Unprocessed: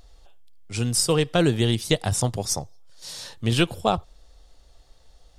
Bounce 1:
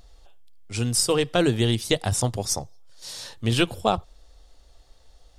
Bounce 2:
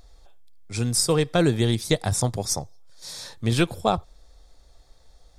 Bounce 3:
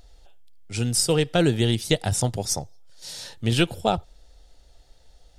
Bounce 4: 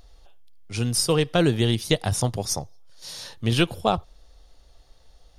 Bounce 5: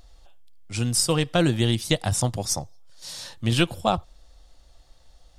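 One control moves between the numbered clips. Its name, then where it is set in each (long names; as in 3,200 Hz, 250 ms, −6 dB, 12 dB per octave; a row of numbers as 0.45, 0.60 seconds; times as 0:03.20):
notch filter, centre frequency: 160, 2,900, 1,100, 7,700, 430 Hertz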